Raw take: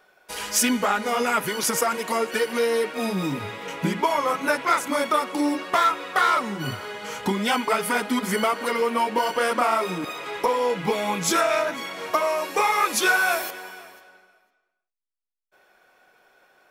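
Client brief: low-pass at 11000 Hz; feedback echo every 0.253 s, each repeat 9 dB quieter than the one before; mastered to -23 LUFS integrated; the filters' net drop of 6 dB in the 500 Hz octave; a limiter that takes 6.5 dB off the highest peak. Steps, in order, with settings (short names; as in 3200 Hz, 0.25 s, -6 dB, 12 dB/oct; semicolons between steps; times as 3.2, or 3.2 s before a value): LPF 11000 Hz; bell 500 Hz -7.5 dB; limiter -16 dBFS; feedback echo 0.253 s, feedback 35%, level -9 dB; gain +3.5 dB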